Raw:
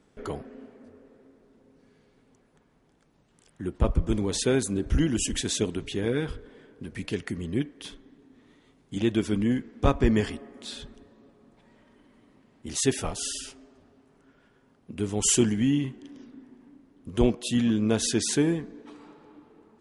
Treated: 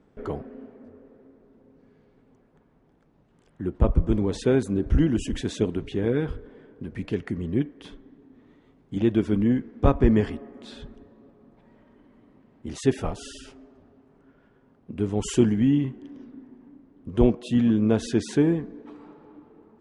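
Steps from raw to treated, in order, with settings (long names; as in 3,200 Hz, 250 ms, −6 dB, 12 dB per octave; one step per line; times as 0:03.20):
low-pass filter 1,100 Hz 6 dB per octave
level +3.5 dB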